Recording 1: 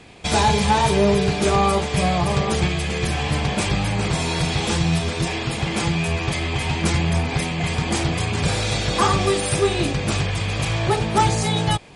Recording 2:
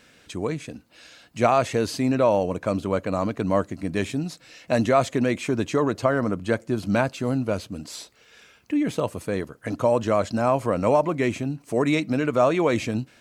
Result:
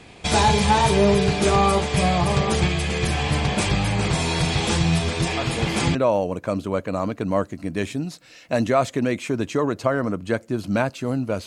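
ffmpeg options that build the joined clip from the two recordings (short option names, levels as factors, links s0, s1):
-filter_complex "[1:a]asplit=2[s0][s1];[0:a]apad=whole_dur=11.46,atrim=end=11.46,atrim=end=5.952[s2];[s1]atrim=start=2.138:end=7.65[s3];[s0]atrim=start=1.56:end=2.14,asetpts=PTS-STARTPTS,volume=0.422,afade=t=in:d=0.004:c=hsin,afade=t=out:st=0.576:d=0.004:c=hsin,adelay=236817S[s4];[s2][s3]acrossfade=d=0.004:c1=hsin:c2=hsin[s5];[s5][s4]amix=inputs=2:normalize=0"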